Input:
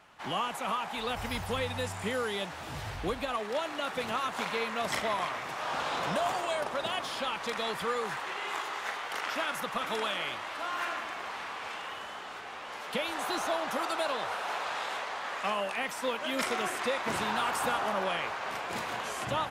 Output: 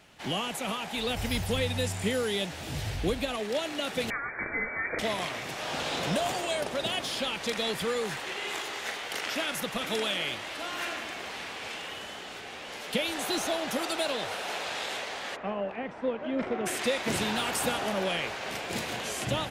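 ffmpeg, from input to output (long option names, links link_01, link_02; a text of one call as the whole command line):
ffmpeg -i in.wav -filter_complex "[0:a]asettb=1/sr,asplit=3[link_01][link_02][link_03];[link_01]atrim=end=4.104[link_04];[link_02]atrim=start=4.1:end=4.99,asetpts=PTS-STARTPTS,afade=type=in:duration=0.004:curve=qsin,afade=type=out:start_time=0.886:duration=0.004:curve=qsin,lowpass=frequency=2100:width_type=q:width=0.5098,lowpass=frequency=2100:width_type=q:width=0.6013,lowpass=frequency=2100:width_type=q:width=0.9,lowpass=frequency=2100:width_type=q:width=2.563,afreqshift=-2500[link_05];[link_03]atrim=start=4.986[link_06];[link_04][link_05]acrossfade=duration=0.004:curve1=hsin:curve2=qsin[link_07];[link_07][link_06]acrossfade=duration=0.004:curve1=qsin:curve2=hsin,asplit=3[link_08][link_09][link_10];[link_08]afade=type=out:start_time=15.35:duration=0.02[link_11];[link_09]lowpass=1200,afade=type=in:start_time=15.35:duration=0.02,afade=type=out:start_time=16.65:duration=0.02[link_12];[link_10]afade=type=in:start_time=16.65:duration=0.02[link_13];[link_11][link_12][link_13]amix=inputs=3:normalize=0,equalizer=frequency=1100:width=1:gain=-13,volume=7dB" out.wav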